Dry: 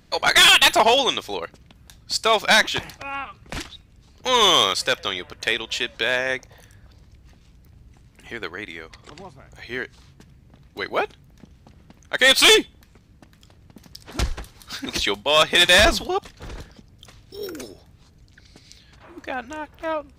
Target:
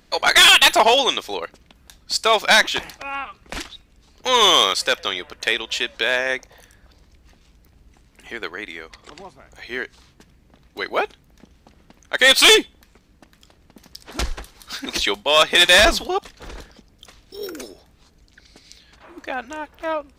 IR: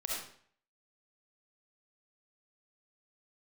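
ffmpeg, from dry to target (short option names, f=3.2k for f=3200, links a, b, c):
-af "equalizer=f=110:w=1.1:g=-12,volume=2dB"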